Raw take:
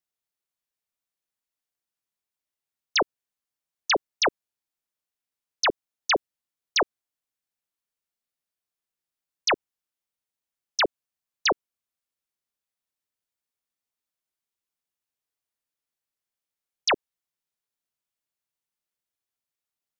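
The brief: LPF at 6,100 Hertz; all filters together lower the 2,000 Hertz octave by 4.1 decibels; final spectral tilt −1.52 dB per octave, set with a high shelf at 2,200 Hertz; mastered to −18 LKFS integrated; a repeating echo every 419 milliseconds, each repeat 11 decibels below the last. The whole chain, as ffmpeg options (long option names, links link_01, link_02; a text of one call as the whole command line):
ffmpeg -i in.wav -af "lowpass=6100,equalizer=frequency=2000:width_type=o:gain=-3,highshelf=frequency=2200:gain=-4,aecho=1:1:419|838|1257:0.282|0.0789|0.0221,volume=13.5dB" out.wav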